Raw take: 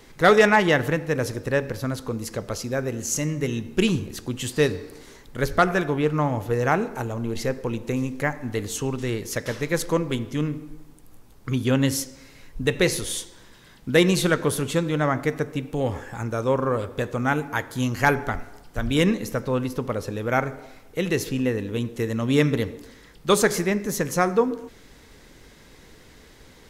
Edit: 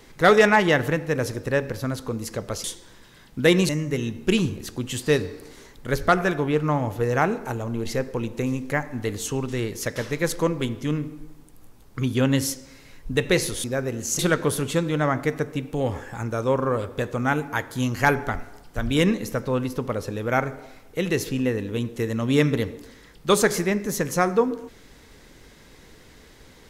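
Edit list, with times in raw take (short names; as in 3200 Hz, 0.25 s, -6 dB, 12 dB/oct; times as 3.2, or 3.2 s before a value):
2.64–3.19 swap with 13.14–14.19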